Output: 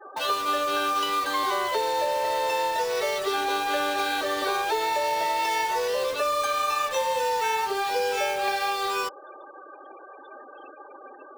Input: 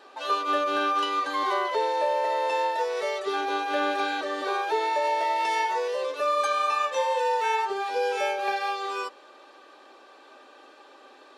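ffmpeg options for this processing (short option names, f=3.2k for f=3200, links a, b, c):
-filter_complex "[0:a]afftfilt=real='re*gte(hypot(re,im),0.00631)':imag='im*gte(hypot(re,im),0.00631)':win_size=1024:overlap=0.75,highshelf=f=5.2k:g=11,bandreject=f=60:t=h:w=6,bandreject=f=120:t=h:w=6,bandreject=f=180:t=h:w=6,bandreject=f=240:t=h:w=6,bandreject=f=300:t=h:w=6,acrossover=split=290|4800[a][b][c];[a]acompressor=threshold=-50dB:ratio=4[d];[b]acompressor=threshold=-29dB:ratio=4[e];[c]acompressor=threshold=-48dB:ratio=4[f];[d][e][f]amix=inputs=3:normalize=0,asplit=2[g][h];[h]aeval=exprs='(mod(50.1*val(0)+1,2)-1)/50.1':c=same,volume=-8dB[i];[g][i]amix=inputs=2:normalize=0,volume=5dB"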